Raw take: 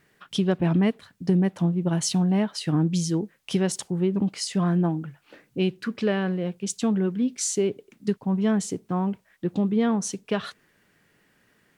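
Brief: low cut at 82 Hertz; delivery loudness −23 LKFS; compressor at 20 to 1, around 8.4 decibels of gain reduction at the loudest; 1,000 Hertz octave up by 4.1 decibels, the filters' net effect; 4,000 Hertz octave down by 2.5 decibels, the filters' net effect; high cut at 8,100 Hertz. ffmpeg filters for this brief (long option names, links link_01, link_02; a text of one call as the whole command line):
ffmpeg -i in.wav -af "highpass=82,lowpass=8100,equalizer=frequency=1000:width_type=o:gain=5.5,equalizer=frequency=4000:width_type=o:gain=-3.5,acompressor=threshold=-25dB:ratio=20,volume=8.5dB" out.wav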